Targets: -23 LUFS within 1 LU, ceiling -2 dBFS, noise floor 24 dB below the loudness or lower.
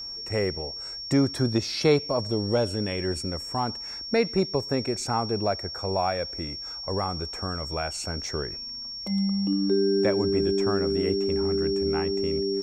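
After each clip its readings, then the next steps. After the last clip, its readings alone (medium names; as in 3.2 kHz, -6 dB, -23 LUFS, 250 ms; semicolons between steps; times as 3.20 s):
steady tone 5.5 kHz; tone level -34 dBFS; loudness -26.5 LUFS; peak level -9.5 dBFS; loudness target -23.0 LUFS
-> band-stop 5.5 kHz, Q 30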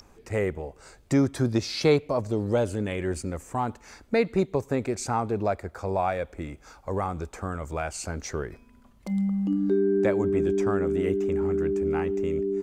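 steady tone not found; loudness -27.0 LUFS; peak level -10.0 dBFS; loudness target -23.0 LUFS
-> trim +4 dB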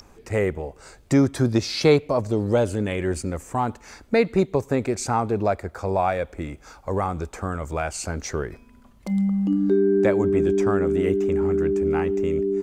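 loudness -23.0 LUFS; peak level -6.0 dBFS; noise floor -52 dBFS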